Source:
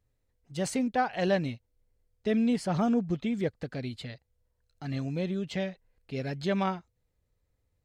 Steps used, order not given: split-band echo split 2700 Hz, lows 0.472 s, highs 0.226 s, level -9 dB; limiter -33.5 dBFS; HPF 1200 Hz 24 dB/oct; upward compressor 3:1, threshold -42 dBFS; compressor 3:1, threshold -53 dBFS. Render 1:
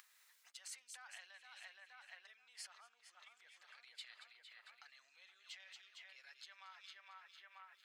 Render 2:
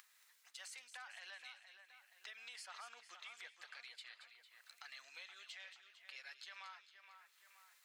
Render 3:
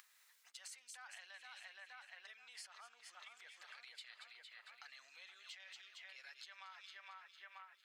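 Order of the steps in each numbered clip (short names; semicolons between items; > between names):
split-band echo > limiter > compressor > upward compressor > HPF; upward compressor > HPF > limiter > compressor > split-band echo; split-band echo > upward compressor > limiter > HPF > compressor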